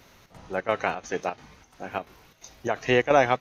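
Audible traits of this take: chopped level 2.9 Hz, depth 60%, duty 75%

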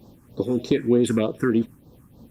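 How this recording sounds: tremolo triangle 3.7 Hz, depth 45%; phasing stages 4, 3.3 Hz, lowest notch 590–2200 Hz; Opus

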